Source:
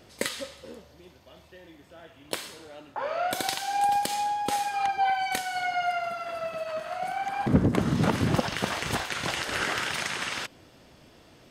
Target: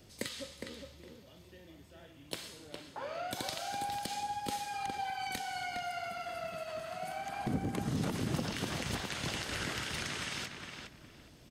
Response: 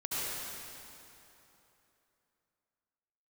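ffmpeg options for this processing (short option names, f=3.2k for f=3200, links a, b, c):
-filter_complex "[0:a]equalizer=f=1k:w=0.33:g=-10,acrossover=split=250|5900[a][b][c];[a]acompressor=threshold=-38dB:ratio=4[d];[b]acompressor=threshold=-36dB:ratio=4[e];[c]acompressor=threshold=-50dB:ratio=4[f];[d][e][f]amix=inputs=3:normalize=0,asplit=2[g][h];[h]adelay=411,lowpass=f=3.5k:p=1,volume=-5dB,asplit=2[i][j];[j]adelay=411,lowpass=f=3.5k:p=1,volume=0.23,asplit=2[k][l];[l]adelay=411,lowpass=f=3.5k:p=1,volume=0.23[m];[g][i][k][m]amix=inputs=4:normalize=0"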